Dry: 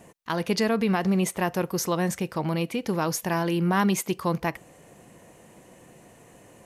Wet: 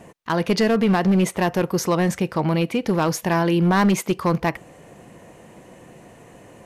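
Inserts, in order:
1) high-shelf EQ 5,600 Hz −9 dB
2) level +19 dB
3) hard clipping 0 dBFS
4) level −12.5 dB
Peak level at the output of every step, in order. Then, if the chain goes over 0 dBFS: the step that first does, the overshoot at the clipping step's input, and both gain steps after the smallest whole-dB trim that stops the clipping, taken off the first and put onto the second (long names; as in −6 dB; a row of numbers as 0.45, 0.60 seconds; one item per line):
−13.5, +5.5, 0.0, −12.5 dBFS
step 2, 5.5 dB
step 2 +13 dB, step 4 −6.5 dB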